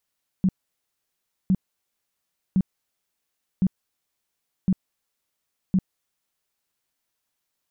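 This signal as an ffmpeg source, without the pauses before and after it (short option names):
-f lavfi -i "aevalsrc='0.168*sin(2*PI*188*mod(t,1.06))*lt(mod(t,1.06),9/188)':d=6.36:s=44100"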